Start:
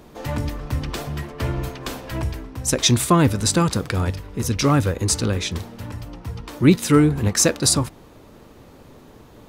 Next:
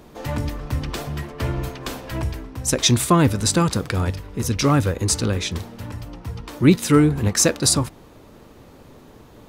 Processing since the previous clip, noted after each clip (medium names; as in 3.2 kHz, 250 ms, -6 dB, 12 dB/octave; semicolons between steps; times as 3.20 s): no audible change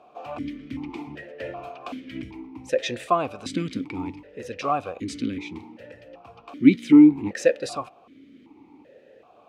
stepped vowel filter 2.6 Hz; trim +6 dB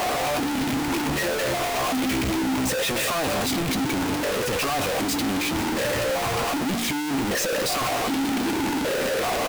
one-bit comparator; doubling 15 ms -11 dB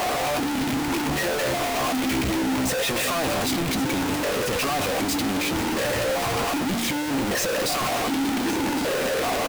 delay 1112 ms -12.5 dB